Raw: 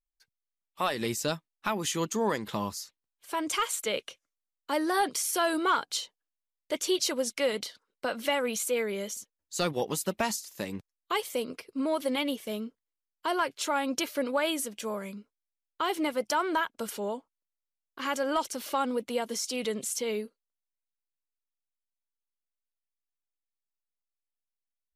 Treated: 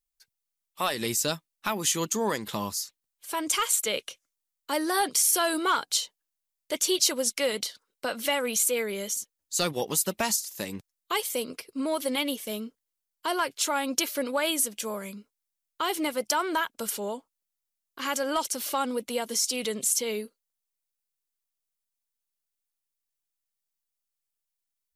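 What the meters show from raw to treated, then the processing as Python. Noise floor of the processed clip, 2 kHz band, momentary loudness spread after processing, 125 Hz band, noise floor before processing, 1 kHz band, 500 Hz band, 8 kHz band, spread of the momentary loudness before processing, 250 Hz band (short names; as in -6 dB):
-85 dBFS, +1.5 dB, 12 LU, 0.0 dB, under -85 dBFS, +0.5 dB, 0.0 dB, +8.0 dB, 10 LU, 0.0 dB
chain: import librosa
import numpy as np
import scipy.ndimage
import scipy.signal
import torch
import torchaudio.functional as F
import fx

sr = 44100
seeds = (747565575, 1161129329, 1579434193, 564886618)

y = fx.high_shelf(x, sr, hz=4300.0, db=10.5)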